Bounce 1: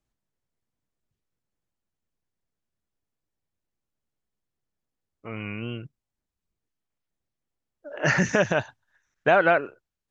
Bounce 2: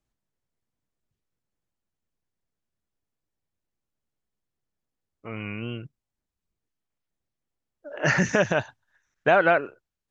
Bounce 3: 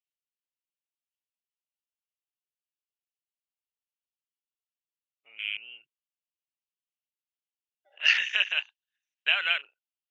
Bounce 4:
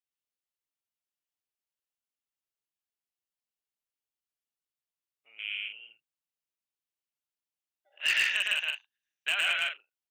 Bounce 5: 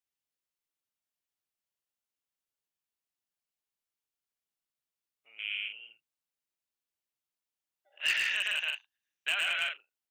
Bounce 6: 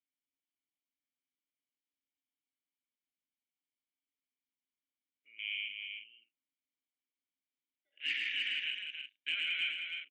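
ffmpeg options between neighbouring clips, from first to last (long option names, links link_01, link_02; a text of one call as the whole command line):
ffmpeg -i in.wav -af anull out.wav
ffmpeg -i in.wav -af "afwtdn=0.0178,highpass=frequency=2800:width_type=q:width=5.6" out.wav
ffmpeg -i in.wav -af "asoftclip=type=hard:threshold=-16.5dB,aecho=1:1:110.8|154.5:0.891|0.501,volume=-4dB" out.wav
ffmpeg -i in.wav -af "alimiter=limit=-22dB:level=0:latency=1:release=22" out.wav
ffmpeg -i in.wav -filter_complex "[0:a]asplit=3[link_01][link_02][link_03];[link_01]bandpass=frequency=270:width_type=q:width=8,volume=0dB[link_04];[link_02]bandpass=frequency=2290:width_type=q:width=8,volume=-6dB[link_05];[link_03]bandpass=frequency=3010:width_type=q:width=8,volume=-9dB[link_06];[link_04][link_05][link_06]amix=inputs=3:normalize=0,aecho=1:1:311:0.531,volume=7dB" out.wav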